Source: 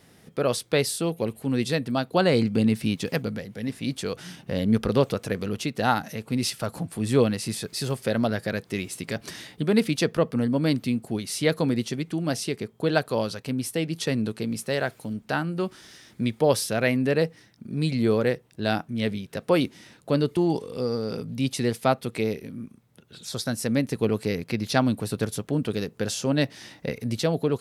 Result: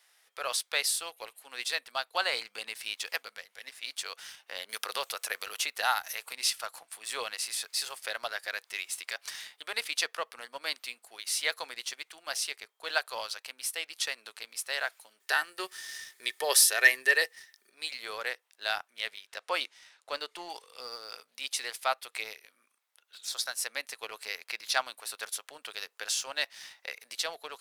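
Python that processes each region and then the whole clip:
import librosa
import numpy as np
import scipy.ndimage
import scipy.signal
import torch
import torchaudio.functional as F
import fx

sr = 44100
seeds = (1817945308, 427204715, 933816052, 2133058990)

y = fx.chain(x, sr, fx.high_shelf(hz=8600.0, db=10.5),
    fx.band_squash(depth_pct=70), at=(4.69, 6.33))
y = fx.chain(y, sr, fx.high_shelf(hz=4300.0, db=11.5),
    fx.small_body(hz=(390.0, 1800.0), ring_ms=55, db=17), at=(15.2, 17.7))
y = fx.chain(y, sr, fx.lowpass(hz=8900.0, slope=12),
    fx.low_shelf(hz=430.0, db=5.5), at=(19.27, 20.49))
y = scipy.signal.sosfilt(scipy.signal.bessel(4, 1200.0, 'highpass', norm='mag', fs=sr, output='sos'), y)
y = fx.leveller(y, sr, passes=1)
y = F.gain(torch.from_numpy(y), -3.0).numpy()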